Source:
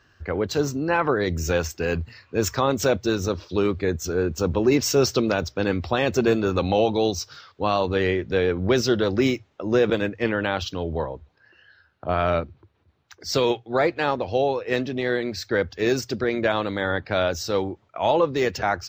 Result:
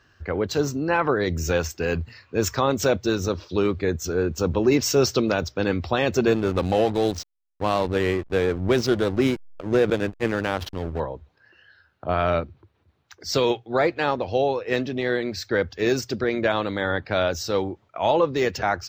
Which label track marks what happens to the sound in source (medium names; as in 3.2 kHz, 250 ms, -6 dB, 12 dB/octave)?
6.340000	11.000000	hysteresis with a dead band play -25 dBFS